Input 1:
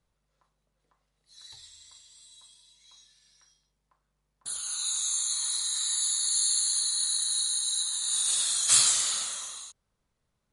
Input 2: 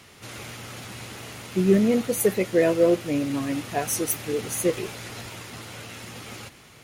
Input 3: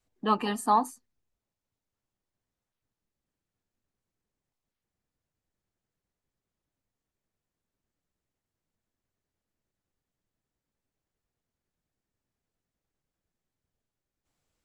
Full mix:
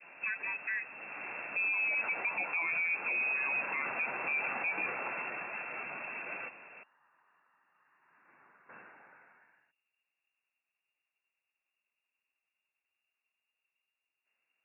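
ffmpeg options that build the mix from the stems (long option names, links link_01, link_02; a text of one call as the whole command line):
ffmpeg -i stem1.wav -i stem2.wav -i stem3.wav -filter_complex "[0:a]volume=-15dB[link_01];[1:a]adynamicequalizer=threshold=0.00794:dfrequency=1800:dqfactor=0.78:tfrequency=1800:tqfactor=0.78:attack=5:release=100:ratio=0.375:range=3.5:mode=boostabove:tftype=bell,acompressor=threshold=-21dB:ratio=6,volume=-1dB[link_02];[2:a]acompressor=threshold=-32dB:ratio=6,volume=-0.5dB,asplit=2[link_03][link_04];[link_04]apad=whole_len=301245[link_05];[link_02][link_05]sidechaincompress=threshold=-42dB:ratio=8:attack=35:release=612[link_06];[link_01][link_06][link_03]amix=inputs=3:normalize=0,lowpass=frequency=2400:width_type=q:width=0.5098,lowpass=frequency=2400:width_type=q:width=0.6013,lowpass=frequency=2400:width_type=q:width=0.9,lowpass=frequency=2400:width_type=q:width=2.563,afreqshift=-2800,highpass=frequency=140:width=0.5412,highpass=frequency=140:width=1.3066,alimiter=level_in=1.5dB:limit=-24dB:level=0:latency=1:release=24,volume=-1.5dB" out.wav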